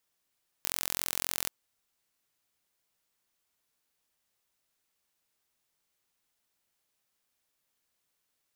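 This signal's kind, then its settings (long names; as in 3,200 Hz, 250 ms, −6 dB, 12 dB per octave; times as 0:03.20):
impulse train 43.7 per second, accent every 0, −4 dBFS 0.83 s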